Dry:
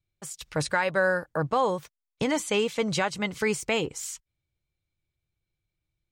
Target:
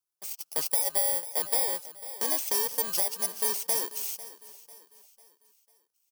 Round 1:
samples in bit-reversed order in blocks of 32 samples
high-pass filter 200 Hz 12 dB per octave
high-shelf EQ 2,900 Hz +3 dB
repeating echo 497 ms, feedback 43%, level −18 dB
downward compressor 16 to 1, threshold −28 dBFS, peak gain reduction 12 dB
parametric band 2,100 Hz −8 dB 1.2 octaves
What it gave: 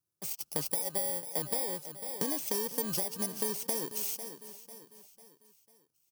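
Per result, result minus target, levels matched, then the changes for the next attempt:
250 Hz band +13.5 dB; downward compressor: peak gain reduction +7.5 dB
change: high-pass filter 610 Hz 12 dB per octave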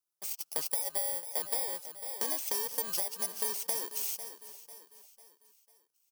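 downward compressor: peak gain reduction +7 dB
change: downward compressor 16 to 1, threshold −20.5 dBFS, peak gain reduction 5 dB

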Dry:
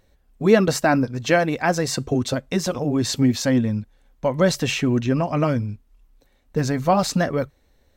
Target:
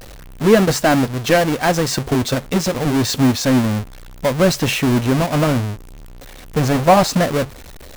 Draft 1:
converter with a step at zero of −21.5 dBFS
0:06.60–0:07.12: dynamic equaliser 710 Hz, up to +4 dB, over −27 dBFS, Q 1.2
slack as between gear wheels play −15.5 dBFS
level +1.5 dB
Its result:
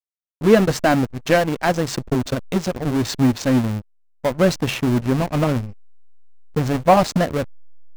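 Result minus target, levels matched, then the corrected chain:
converter with a step at zero: distortion −5 dB
converter with a step at zero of −14.5 dBFS
0:06.60–0:07.12: dynamic equaliser 710 Hz, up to +4 dB, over −27 dBFS, Q 1.2
slack as between gear wheels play −15.5 dBFS
level +1.5 dB

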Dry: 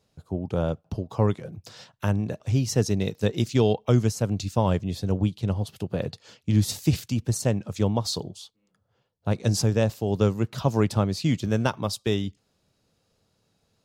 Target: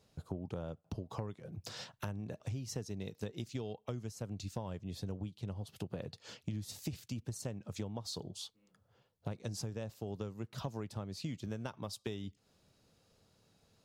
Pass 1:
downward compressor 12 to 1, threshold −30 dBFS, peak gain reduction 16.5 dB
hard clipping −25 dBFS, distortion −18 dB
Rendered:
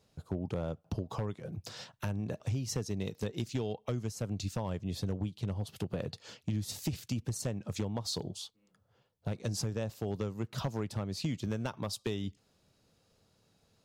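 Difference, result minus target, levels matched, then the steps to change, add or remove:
downward compressor: peak gain reduction −6.5 dB
change: downward compressor 12 to 1, threshold −37 dBFS, peak gain reduction 23 dB

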